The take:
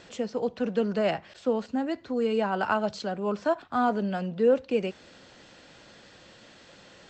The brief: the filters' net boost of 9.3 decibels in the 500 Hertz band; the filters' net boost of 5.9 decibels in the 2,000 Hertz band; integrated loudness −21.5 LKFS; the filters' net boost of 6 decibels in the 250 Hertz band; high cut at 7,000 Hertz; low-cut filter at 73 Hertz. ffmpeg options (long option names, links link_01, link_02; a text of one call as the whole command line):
ffmpeg -i in.wav -af "highpass=73,lowpass=7000,equalizer=frequency=250:width_type=o:gain=5,equalizer=frequency=500:width_type=o:gain=9,equalizer=frequency=2000:width_type=o:gain=8,volume=-1.5dB" out.wav